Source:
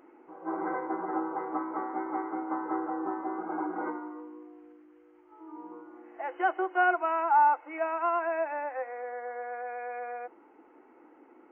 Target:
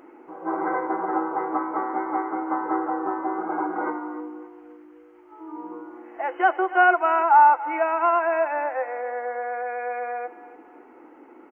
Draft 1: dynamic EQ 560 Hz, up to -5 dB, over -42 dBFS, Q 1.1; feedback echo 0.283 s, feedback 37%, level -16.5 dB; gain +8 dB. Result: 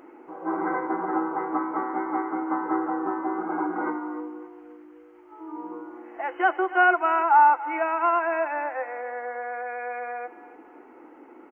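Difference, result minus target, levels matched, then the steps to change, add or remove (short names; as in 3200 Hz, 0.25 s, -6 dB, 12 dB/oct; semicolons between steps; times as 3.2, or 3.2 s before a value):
250 Hz band +2.5 dB
change: dynamic EQ 220 Hz, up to -5 dB, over -42 dBFS, Q 1.1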